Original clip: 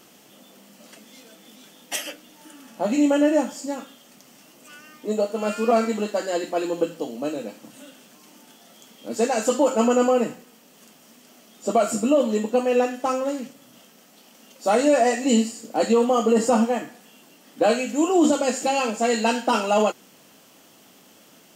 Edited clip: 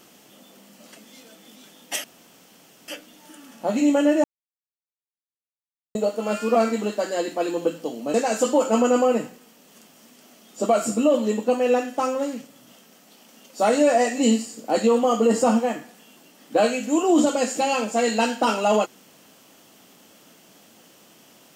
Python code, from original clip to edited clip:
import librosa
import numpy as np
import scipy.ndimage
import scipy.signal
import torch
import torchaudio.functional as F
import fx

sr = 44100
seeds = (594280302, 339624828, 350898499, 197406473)

y = fx.edit(x, sr, fx.insert_room_tone(at_s=2.04, length_s=0.84),
    fx.silence(start_s=3.4, length_s=1.71),
    fx.cut(start_s=7.3, length_s=1.9), tone=tone)